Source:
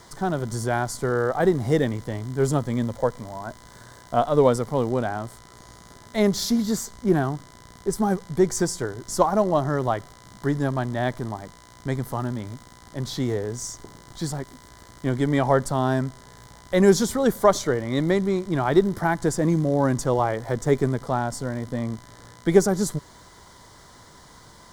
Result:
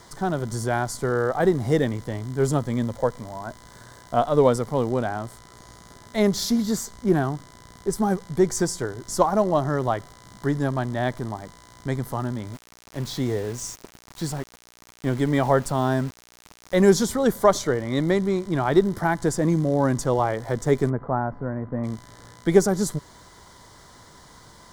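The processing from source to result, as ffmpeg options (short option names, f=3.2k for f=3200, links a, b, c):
-filter_complex "[0:a]asplit=3[a][b][c];[a]afade=t=out:st=12.53:d=0.02[d];[b]aeval=exprs='val(0)*gte(abs(val(0)),0.0133)':c=same,afade=t=in:st=12.53:d=0.02,afade=t=out:st=16.88:d=0.02[e];[c]afade=t=in:st=16.88:d=0.02[f];[d][e][f]amix=inputs=3:normalize=0,asettb=1/sr,asplit=3[g][h][i];[g]atrim=end=20.904[j];[h]atrim=start=20.9:end=21.84,asetpts=PTS-STARTPTS,afade=t=in:d=0.004:c=qsin,afade=t=out:st=0.936:d=0.004:c=qsin,lowpass=f=1.6k:w=0.5412,lowpass=f=1.6k:w=1.3066[k];[i]atrim=start=21.836[l];[j][k]acrossfade=d=0.004:c1=hsin:c2=qsin[m];[m][l]acrossfade=d=0.004:c1=qsin:c2=hsin"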